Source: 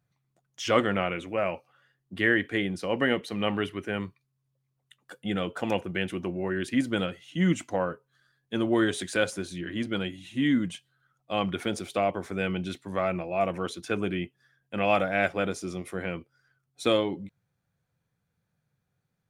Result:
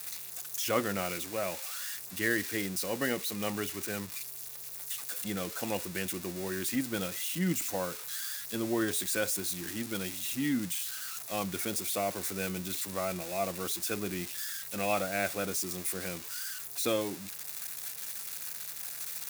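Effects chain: switching spikes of -20 dBFS; notch 3100 Hz, Q 14; gain -6.5 dB

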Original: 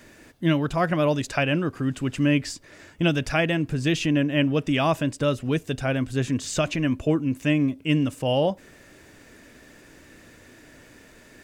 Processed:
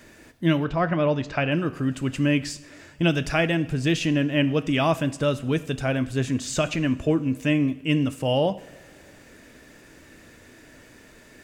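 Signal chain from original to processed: 0.64–1.52 air absorption 180 m; two-slope reverb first 0.63 s, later 2.9 s, from -18 dB, DRR 12 dB

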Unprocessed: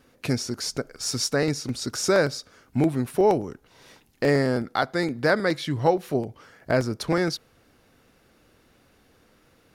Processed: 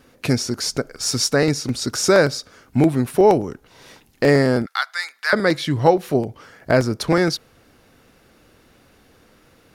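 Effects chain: 4.66–5.33 HPF 1200 Hz 24 dB/oct; gain +6 dB

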